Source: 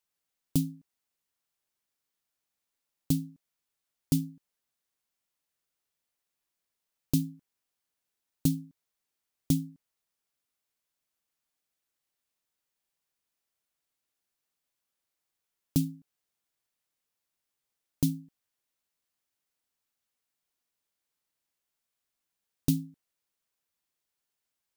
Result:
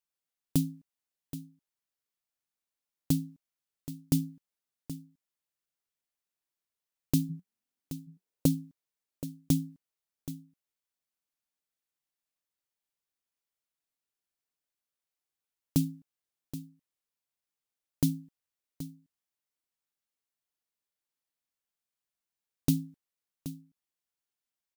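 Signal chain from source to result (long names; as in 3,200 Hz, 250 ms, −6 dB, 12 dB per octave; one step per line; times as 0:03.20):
noise gate −47 dBFS, range −7 dB
0:07.29–0:08.53: parametric band 160 Hz → 570 Hz +13.5 dB 0.61 octaves
single-tap delay 776 ms −13.5 dB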